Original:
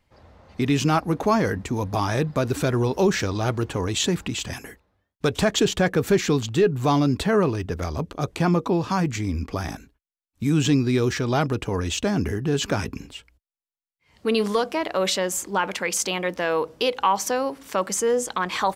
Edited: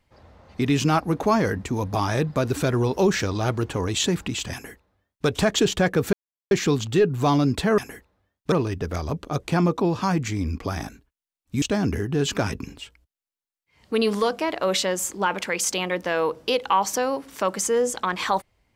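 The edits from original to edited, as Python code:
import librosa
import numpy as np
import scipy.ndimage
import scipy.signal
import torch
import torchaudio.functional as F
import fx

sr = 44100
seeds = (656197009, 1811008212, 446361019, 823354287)

y = fx.edit(x, sr, fx.duplicate(start_s=4.53, length_s=0.74, to_s=7.4),
    fx.insert_silence(at_s=6.13, length_s=0.38),
    fx.cut(start_s=10.5, length_s=1.45), tone=tone)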